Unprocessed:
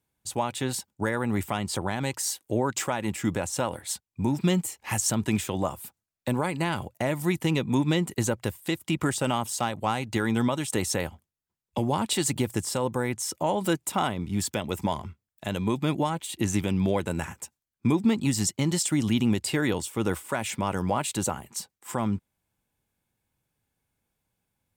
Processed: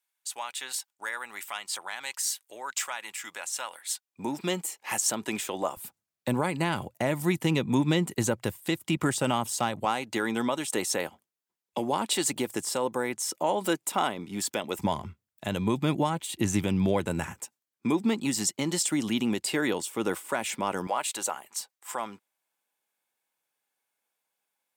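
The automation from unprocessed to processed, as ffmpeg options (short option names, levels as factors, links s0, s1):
-af "asetnsamples=n=441:p=0,asendcmd='4.05 highpass f 360;5.77 highpass f 110;9.85 highpass f 280;14.79 highpass f 84;17.4 highpass f 250;20.87 highpass f 610',highpass=1300"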